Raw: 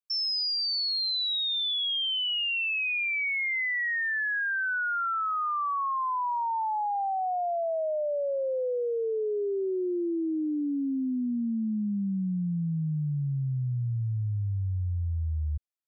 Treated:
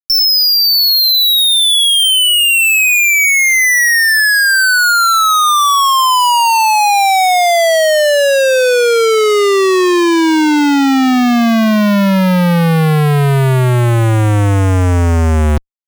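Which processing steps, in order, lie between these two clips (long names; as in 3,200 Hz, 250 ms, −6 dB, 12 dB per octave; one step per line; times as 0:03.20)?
speech leveller
fuzz pedal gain 57 dB, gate −55 dBFS
level +3.5 dB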